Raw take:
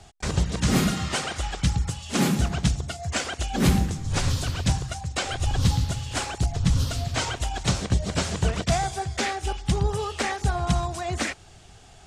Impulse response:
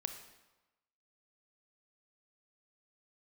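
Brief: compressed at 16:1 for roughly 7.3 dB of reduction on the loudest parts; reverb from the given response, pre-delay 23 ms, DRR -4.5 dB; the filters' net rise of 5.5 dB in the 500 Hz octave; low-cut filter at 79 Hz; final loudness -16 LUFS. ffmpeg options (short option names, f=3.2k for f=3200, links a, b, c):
-filter_complex "[0:a]highpass=79,equalizer=f=500:t=o:g=7.5,acompressor=threshold=-23dB:ratio=16,asplit=2[a][b];[1:a]atrim=start_sample=2205,adelay=23[c];[b][c]afir=irnorm=-1:irlink=0,volume=5.5dB[d];[a][d]amix=inputs=2:normalize=0,volume=7dB"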